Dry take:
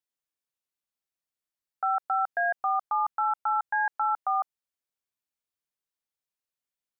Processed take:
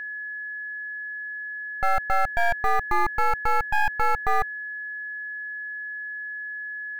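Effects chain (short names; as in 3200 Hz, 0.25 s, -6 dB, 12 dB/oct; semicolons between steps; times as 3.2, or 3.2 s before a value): half-wave gain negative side -12 dB; low shelf 420 Hz +8 dB; short-mantissa float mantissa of 4-bit; whine 1700 Hz -36 dBFS; gain +5 dB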